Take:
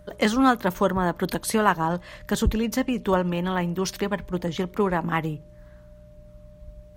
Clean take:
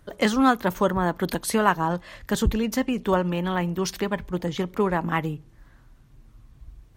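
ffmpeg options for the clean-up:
-af "bandreject=f=59.9:t=h:w=4,bandreject=f=119.8:t=h:w=4,bandreject=f=179.7:t=h:w=4,bandreject=f=600:w=30"

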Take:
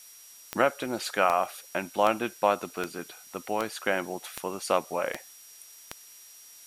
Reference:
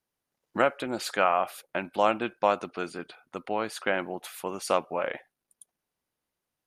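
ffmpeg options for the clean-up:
-af "adeclick=t=4,bandreject=f=5700:w=30,afftdn=nr=30:nf=-51"

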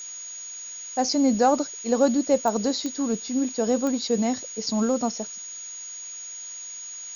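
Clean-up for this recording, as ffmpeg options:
-af "adeclick=t=4,bandreject=f=6700:w=30,afftdn=nr=30:nf=-38"

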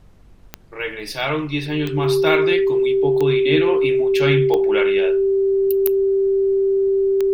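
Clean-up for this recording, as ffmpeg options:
-af "adeclick=t=4,bandreject=f=46.4:t=h:w=4,bandreject=f=92.8:t=h:w=4,bandreject=f=139.2:t=h:w=4,bandreject=f=185.6:t=h:w=4,bandreject=f=390:w=30,agate=range=0.0891:threshold=0.0355"

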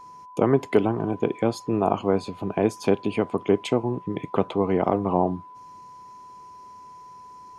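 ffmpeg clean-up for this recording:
-af "bandreject=f=1000:w=30"

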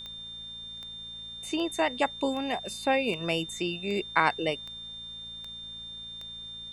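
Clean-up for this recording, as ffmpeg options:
-af "adeclick=t=4,bandreject=f=56.2:t=h:w=4,bandreject=f=112.4:t=h:w=4,bandreject=f=168.6:t=h:w=4,bandreject=f=224.8:t=h:w=4,bandreject=f=3600:w=30,agate=range=0.0891:threshold=0.02"

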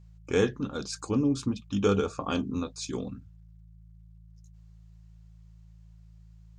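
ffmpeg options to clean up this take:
-af "bandreject=f=54.7:t=h:w=4,bandreject=f=109.4:t=h:w=4,bandreject=f=164.1:t=h:w=4"

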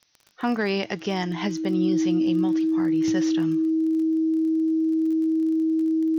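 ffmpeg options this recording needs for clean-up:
-af "adeclick=t=4,bandreject=f=320:w=30,agate=range=0.0891:threshold=0.0708"

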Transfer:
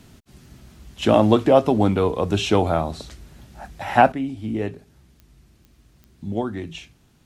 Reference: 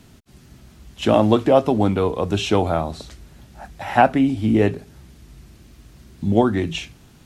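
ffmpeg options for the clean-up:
-af "adeclick=t=4,asetnsamples=n=441:p=0,asendcmd='4.12 volume volume 9dB',volume=1"

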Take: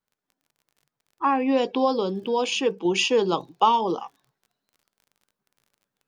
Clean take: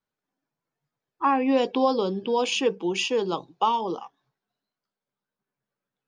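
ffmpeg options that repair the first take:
-af "adeclick=t=4,asetnsamples=n=441:p=0,asendcmd='2.85 volume volume -4dB',volume=1"

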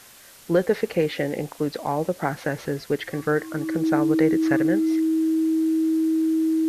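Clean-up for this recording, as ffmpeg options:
-af "adeclick=t=4,bandreject=f=320:w=30,afwtdn=0.0045"

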